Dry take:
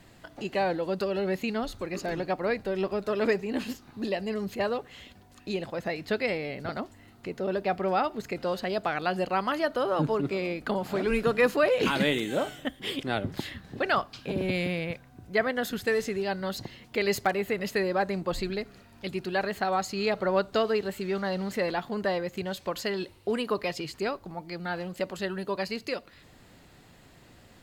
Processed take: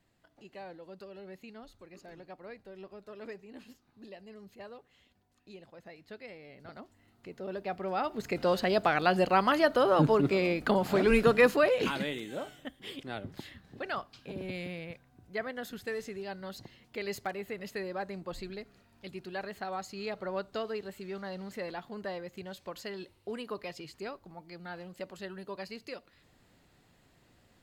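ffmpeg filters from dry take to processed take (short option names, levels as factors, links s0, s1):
-af "volume=1.33,afade=t=in:st=6.35:d=1.6:silence=0.266073,afade=t=in:st=7.95:d=0.54:silence=0.334965,afade=t=out:st=11.2:d=0.87:silence=0.237137"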